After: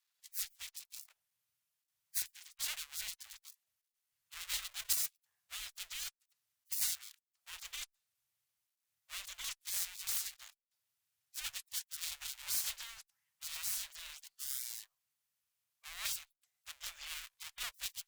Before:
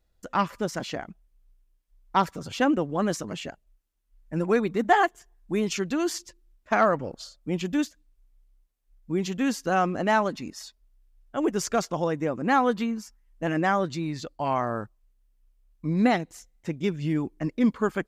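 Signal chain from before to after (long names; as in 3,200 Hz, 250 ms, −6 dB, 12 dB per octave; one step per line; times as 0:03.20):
gap after every zero crossing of 0.22 ms
gate on every frequency bin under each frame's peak −30 dB weak
guitar amp tone stack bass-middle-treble 10-0-10
level +3 dB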